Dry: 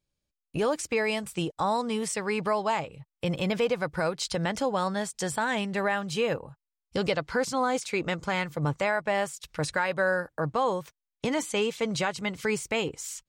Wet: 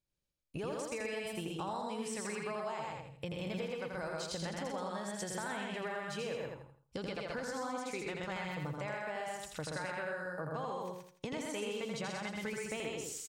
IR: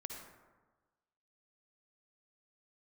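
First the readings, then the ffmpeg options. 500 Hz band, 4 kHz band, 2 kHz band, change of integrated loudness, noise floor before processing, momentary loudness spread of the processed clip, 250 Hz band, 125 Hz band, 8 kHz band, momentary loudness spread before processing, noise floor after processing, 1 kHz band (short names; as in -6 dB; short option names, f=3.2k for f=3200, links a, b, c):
-11.0 dB, -10.0 dB, -11.0 dB, -11.0 dB, under -85 dBFS, 4 LU, -10.5 dB, -10.0 dB, -8.5 dB, 5 LU, -73 dBFS, -11.5 dB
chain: -filter_complex "[0:a]asplit=2[a][b];[b]aecho=0:1:127:0.668[c];[a][c]amix=inputs=2:normalize=0,acompressor=threshold=-30dB:ratio=6,asplit=2[d][e];[e]aecho=0:1:83|166|249|332:0.631|0.202|0.0646|0.0207[f];[d][f]amix=inputs=2:normalize=0,volume=-7.5dB"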